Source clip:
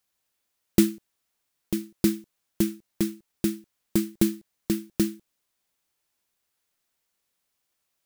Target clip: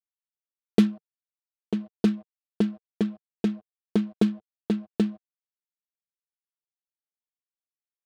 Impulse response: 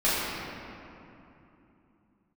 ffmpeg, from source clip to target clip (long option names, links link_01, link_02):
-af "aecho=1:1:4.5:0.76,aeval=exprs='val(0)*gte(abs(val(0)),0.0075)':channel_layout=same,highpass=110,equalizer=frequency=160:width_type=q:width=4:gain=-7,equalizer=frequency=450:width_type=q:width=4:gain=8,equalizer=frequency=730:width_type=q:width=4:gain=6,equalizer=frequency=2100:width_type=q:width=4:gain=-8,lowpass=frequency=4300:width=0.5412,lowpass=frequency=4300:width=1.3066,adynamicsmooth=sensitivity=6.5:basefreq=790"